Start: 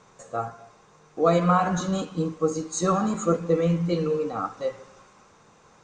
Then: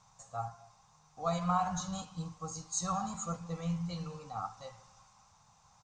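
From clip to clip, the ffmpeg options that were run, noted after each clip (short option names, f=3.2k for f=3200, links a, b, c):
-af "firequalizer=gain_entry='entry(110,0);entry(350,-29);entry(780,-1);entry(1600,-12);entry(5100,1);entry(9500,-3)':delay=0.05:min_phase=1,volume=-3.5dB"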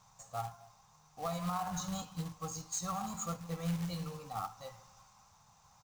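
-af "alimiter=level_in=3dB:limit=-24dB:level=0:latency=1:release=299,volume=-3dB,acrusher=bits=3:mode=log:mix=0:aa=0.000001"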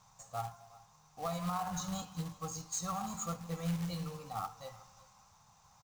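-af "aecho=1:1:366:0.0841"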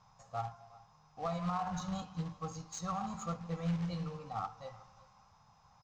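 -af "aeval=exprs='val(0)+0.000282*sin(2*PI*5100*n/s)':c=same,lowpass=f=6.6k:t=q:w=1.5,adynamicsmooth=sensitivity=2:basefreq=3k,volume=1dB"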